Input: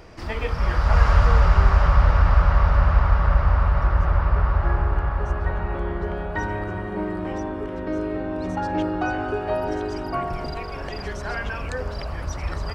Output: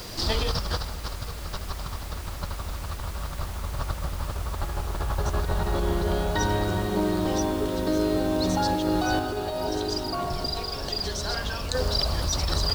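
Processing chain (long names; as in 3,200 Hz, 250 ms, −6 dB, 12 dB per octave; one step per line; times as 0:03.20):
high shelf with overshoot 3,000 Hz +10 dB, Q 3
compressor whose output falls as the input rises −26 dBFS, ratio −1
background noise pink −40 dBFS
0:09.19–0:11.75: flanger 1.2 Hz, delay 7.7 ms, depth 7.9 ms, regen −79%
bit reduction 8 bits
level −1.5 dB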